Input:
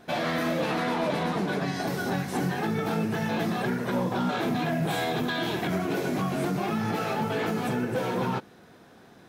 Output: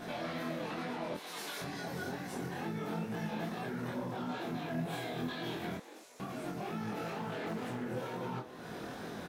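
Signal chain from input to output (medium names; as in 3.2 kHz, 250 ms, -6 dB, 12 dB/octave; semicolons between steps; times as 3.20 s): 1.14–1.62 s: differentiator; compression 6:1, threshold -43 dBFS, peak gain reduction 18 dB; peak limiter -40.5 dBFS, peak gain reduction 10.5 dB; chorus 2.2 Hz, delay 17 ms, depth 7.2 ms; 5.77–6.20 s: band-pass filter 7.9 kHz, Q 1.4; doubling 24 ms -4 dB; frequency-shifting echo 235 ms, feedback 41%, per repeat +130 Hz, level -15 dB; 7.13–7.85 s: loudspeaker Doppler distortion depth 0.31 ms; trim +10.5 dB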